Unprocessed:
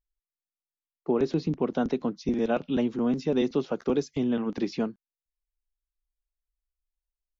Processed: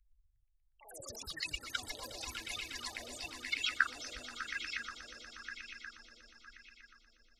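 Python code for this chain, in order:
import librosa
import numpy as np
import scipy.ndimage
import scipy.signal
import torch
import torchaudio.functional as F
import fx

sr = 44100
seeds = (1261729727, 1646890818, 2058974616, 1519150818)

p1 = fx.spec_gate(x, sr, threshold_db=-10, keep='strong')
p2 = scipy.signal.sosfilt(scipy.signal.cheby2(4, 50, [120.0, 680.0], 'bandstop', fs=sr, output='sos'), p1)
p3 = fx.over_compress(p2, sr, threshold_db=-56.0, ratio=-1.0)
p4 = fx.echo_pitch(p3, sr, ms=117, semitones=5, count=3, db_per_echo=-3.0)
p5 = p4 + fx.echo_swell(p4, sr, ms=120, loudest=5, wet_db=-11.5, dry=0)
p6 = fx.bell_lfo(p5, sr, hz=0.97, low_hz=550.0, high_hz=2500.0, db=16)
y = p6 * librosa.db_to_amplitude(12.5)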